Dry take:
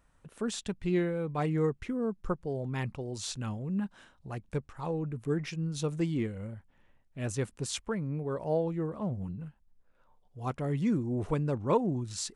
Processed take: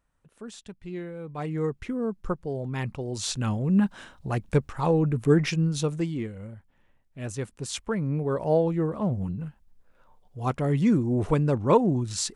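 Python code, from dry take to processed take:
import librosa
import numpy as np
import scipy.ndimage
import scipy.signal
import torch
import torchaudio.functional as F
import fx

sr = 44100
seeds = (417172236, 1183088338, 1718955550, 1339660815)

y = fx.gain(x, sr, db=fx.line((0.96, -7.5), (1.85, 3.0), (2.78, 3.0), (3.78, 11.0), (5.53, 11.0), (6.16, 0.0), (7.58, 0.0), (8.07, 7.0)))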